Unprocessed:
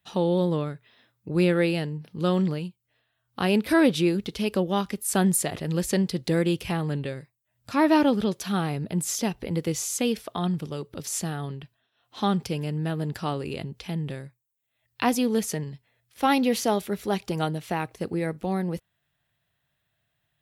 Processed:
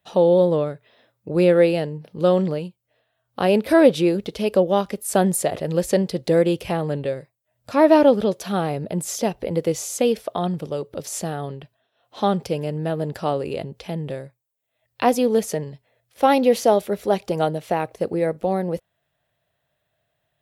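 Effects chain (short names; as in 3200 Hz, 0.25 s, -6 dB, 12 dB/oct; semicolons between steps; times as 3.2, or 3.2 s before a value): bell 570 Hz +12 dB 1 oct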